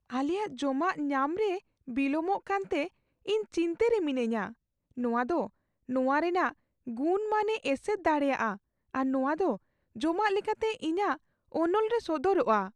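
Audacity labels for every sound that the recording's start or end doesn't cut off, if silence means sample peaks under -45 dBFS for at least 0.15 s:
1.880000	2.880000	sound
3.260000	4.520000	sound
4.970000	5.470000	sound
5.890000	6.520000	sound
6.870000	8.570000	sound
8.940000	9.570000	sound
9.960000	11.160000	sound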